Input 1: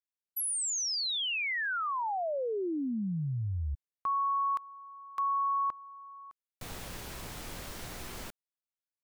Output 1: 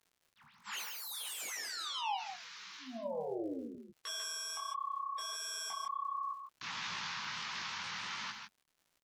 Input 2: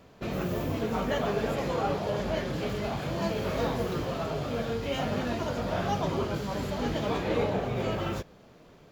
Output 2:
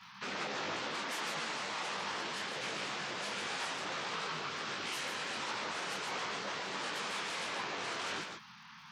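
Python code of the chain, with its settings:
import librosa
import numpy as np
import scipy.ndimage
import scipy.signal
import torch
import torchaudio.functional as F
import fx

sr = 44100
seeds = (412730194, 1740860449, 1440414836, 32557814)

p1 = fx.cvsd(x, sr, bps=32000)
p2 = scipy.signal.sosfilt(scipy.signal.cheby2(5, 50, [300.0, 640.0], 'bandstop', fs=sr, output='sos'), p1)
p3 = fx.fold_sine(p2, sr, drive_db=18, ceiling_db=-20.0)
p4 = p2 + F.gain(torch.from_numpy(p3), -4.5).numpy()
p5 = scipy.signal.sosfilt(scipy.signal.butter(2, 160.0, 'highpass', fs=sr, output='sos'), p4)
p6 = fx.bass_treble(p5, sr, bass_db=-13, treble_db=-3)
p7 = fx.rider(p6, sr, range_db=3, speed_s=2.0)
p8 = fx.spec_gate(p7, sr, threshold_db=-25, keep='strong')
p9 = p8 + fx.echo_single(p8, sr, ms=147, db=-6.0, dry=0)
p10 = fx.dmg_crackle(p9, sr, seeds[0], per_s=82.0, level_db=-43.0)
p11 = fx.detune_double(p10, sr, cents=50)
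y = F.gain(torch.from_numpy(p11), -7.5).numpy()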